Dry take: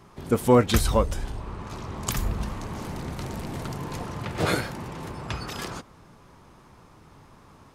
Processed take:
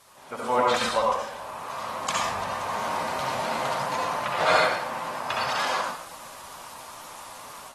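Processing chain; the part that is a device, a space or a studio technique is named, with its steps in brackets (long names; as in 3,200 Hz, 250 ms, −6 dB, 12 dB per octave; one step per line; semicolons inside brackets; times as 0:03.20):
low shelf with overshoot 620 Hz −13.5 dB, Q 1.5
backwards echo 1,040 ms −20.5 dB
filmed off a television (band-pass filter 170–6,800 Hz; parametric band 570 Hz +10 dB 0.6 octaves; convolution reverb RT60 0.75 s, pre-delay 61 ms, DRR −2.5 dB; white noise bed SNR 21 dB; automatic gain control gain up to 11.5 dB; level −8 dB; AAC 32 kbit/s 44,100 Hz)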